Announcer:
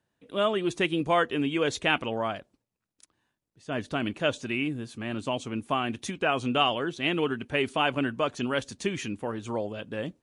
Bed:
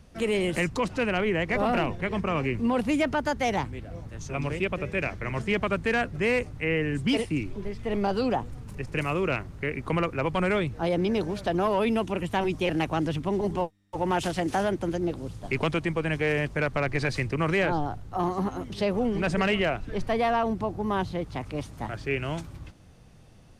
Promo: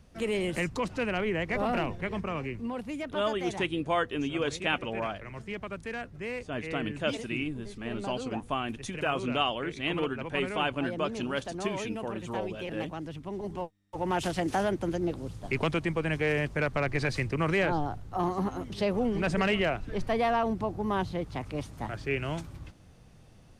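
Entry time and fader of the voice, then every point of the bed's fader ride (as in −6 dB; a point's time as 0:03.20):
2.80 s, −4.0 dB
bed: 0:02.07 −4 dB
0:02.87 −11.5 dB
0:13.14 −11.5 dB
0:14.28 −2 dB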